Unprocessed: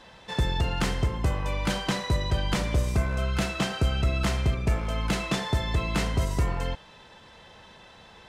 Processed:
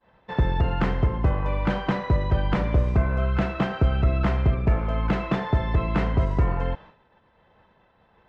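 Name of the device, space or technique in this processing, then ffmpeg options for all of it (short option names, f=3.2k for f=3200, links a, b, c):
hearing-loss simulation: -af "lowpass=1.7k,agate=range=-33dB:threshold=-43dB:ratio=3:detection=peak,volume=4dB"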